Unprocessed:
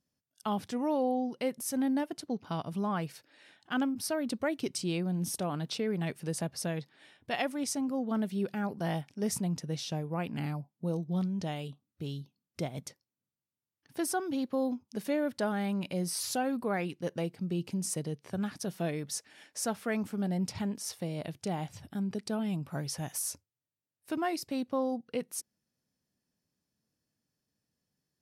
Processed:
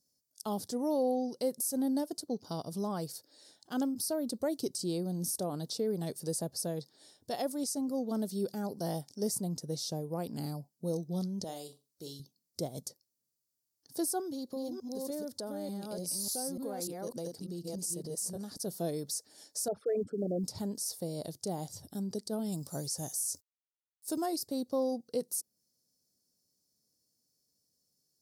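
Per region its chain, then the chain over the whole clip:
11.44–12.2 HPF 480 Hz 6 dB/oct + flutter echo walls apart 7.5 m, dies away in 0.26 s
14.21–18.57 reverse delay 0.296 s, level -2 dB + compressor 2.5:1, threshold -37 dBFS
19.68–20.44 formant sharpening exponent 3 + LPF 2800 Hz + short-mantissa float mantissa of 8-bit
22.52–24.26 bell 7300 Hz +10 dB 1.3 oct + requantised 12-bit, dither none
whole clip: EQ curve 180 Hz 0 dB, 490 Hz +6 dB, 2600 Hz -14 dB, 4600 Hz +15 dB; limiter -17.5 dBFS; dynamic EQ 5600 Hz, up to -7 dB, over -44 dBFS, Q 0.97; gain -4 dB

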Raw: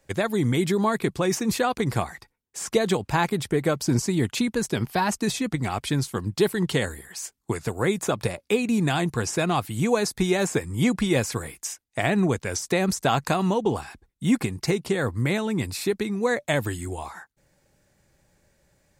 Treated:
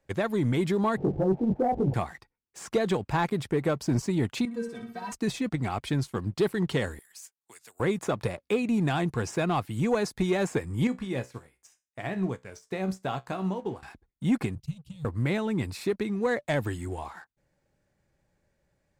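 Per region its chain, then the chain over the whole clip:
0.97–1.94 zero-crossing step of -32 dBFS + steep low-pass 880 Hz 96 dB/oct + doubler 21 ms -3 dB
4.45–5.12 HPF 98 Hz + metallic resonator 230 Hz, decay 0.2 s, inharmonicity 0.008 + flutter echo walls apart 10.3 m, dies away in 0.52 s
6.99–7.8 differentiator + three-band squash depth 40%
10.87–13.83 resonator 63 Hz, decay 0.28 s, mix 70% + upward expander, over -39 dBFS
14.55–15.05 elliptic band-stop 140–4500 Hz, stop band 50 dB + resonant high shelf 3700 Hz -9.5 dB, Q 3
whole clip: high shelf 4200 Hz -10.5 dB; sample leveller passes 1; gain -6 dB

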